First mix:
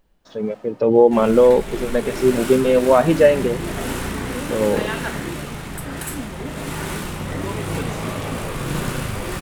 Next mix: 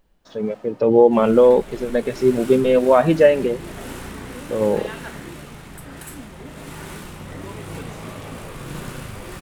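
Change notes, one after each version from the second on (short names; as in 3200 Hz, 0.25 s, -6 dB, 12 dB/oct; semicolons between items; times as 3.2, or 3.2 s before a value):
second sound -8.0 dB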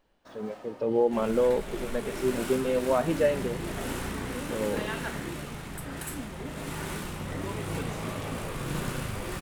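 speech -11.5 dB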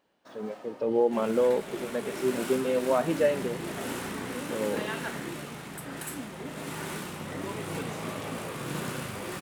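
master: add HPF 150 Hz 12 dB/oct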